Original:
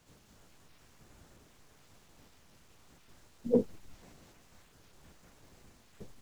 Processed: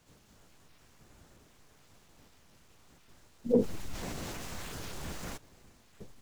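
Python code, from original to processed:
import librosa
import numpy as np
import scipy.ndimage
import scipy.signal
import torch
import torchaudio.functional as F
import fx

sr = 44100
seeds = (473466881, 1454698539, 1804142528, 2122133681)

y = fx.env_flatten(x, sr, amount_pct=50, at=(3.49, 5.36), fade=0.02)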